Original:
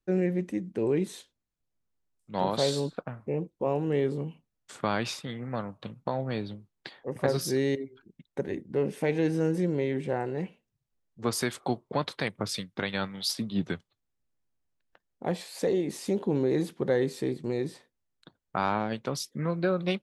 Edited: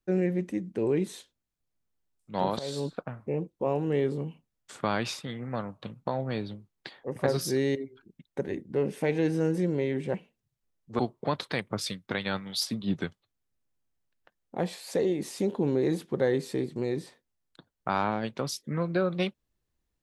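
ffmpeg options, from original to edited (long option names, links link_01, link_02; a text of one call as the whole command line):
ffmpeg -i in.wav -filter_complex "[0:a]asplit=4[link_01][link_02][link_03][link_04];[link_01]atrim=end=2.59,asetpts=PTS-STARTPTS,afade=type=out:start_time=2.586:duration=0.004:curve=hsin:silence=0.141254[link_05];[link_02]atrim=start=2.59:end=10.142,asetpts=PTS-STARTPTS,afade=type=in:duration=0.3:silence=0.141254[link_06];[link_03]atrim=start=10.428:end=11.282[link_07];[link_04]atrim=start=11.668[link_08];[link_05][link_06]concat=n=2:v=0:a=1[link_09];[link_09][link_07]acrossfade=duration=0.004:curve1=hsin:curve2=hsin[link_10];[link_10][link_08]acrossfade=duration=0.004:curve1=hsin:curve2=hsin" out.wav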